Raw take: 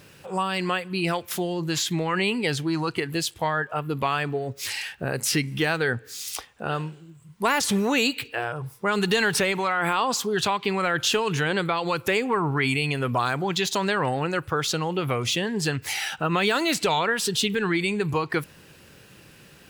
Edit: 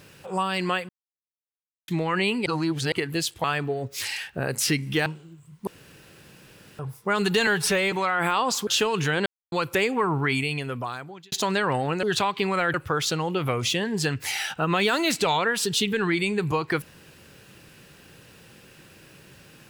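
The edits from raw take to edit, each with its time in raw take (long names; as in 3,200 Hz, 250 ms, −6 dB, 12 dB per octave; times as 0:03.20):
0:00.89–0:01.88: silence
0:02.46–0:02.92: reverse
0:03.44–0:04.09: remove
0:05.71–0:06.83: remove
0:07.44–0:08.56: fill with room tone
0:09.24–0:09.54: time-stretch 1.5×
0:10.29–0:11.00: move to 0:14.36
0:11.59–0:11.85: silence
0:12.53–0:13.65: fade out linear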